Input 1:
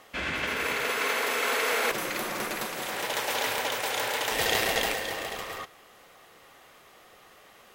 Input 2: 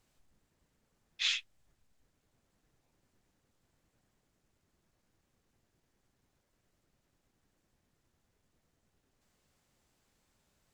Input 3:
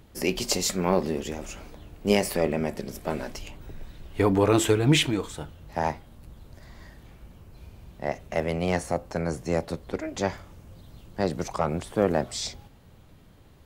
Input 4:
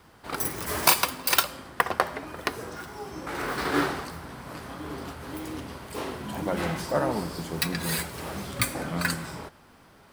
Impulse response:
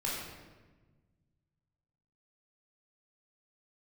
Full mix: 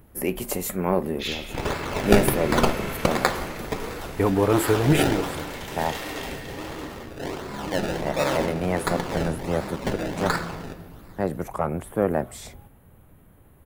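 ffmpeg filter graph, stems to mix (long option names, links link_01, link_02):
-filter_complex "[0:a]highshelf=frequency=9100:gain=8.5,adelay=1400,volume=-12dB,asplit=2[link_01][link_02];[link_02]volume=-7.5dB[link_03];[1:a]volume=-2.5dB,asplit=2[link_04][link_05];[link_05]volume=-5dB[link_06];[2:a]firequalizer=gain_entry='entry(1600,0);entry(4900,-16);entry(11000,14)':delay=0.05:min_phase=1,volume=0.5dB[link_07];[3:a]highpass=frequency=220:poles=1,acrusher=samples=28:mix=1:aa=0.000001:lfo=1:lforange=28:lforate=1.4,adelay=1250,volume=0.5dB,asplit=2[link_08][link_09];[link_09]volume=-9.5dB[link_10];[4:a]atrim=start_sample=2205[link_11];[link_03][link_06][link_10]amix=inputs=3:normalize=0[link_12];[link_12][link_11]afir=irnorm=-1:irlink=0[link_13];[link_01][link_04][link_07][link_08][link_13]amix=inputs=5:normalize=0,highshelf=frequency=10000:gain=-9"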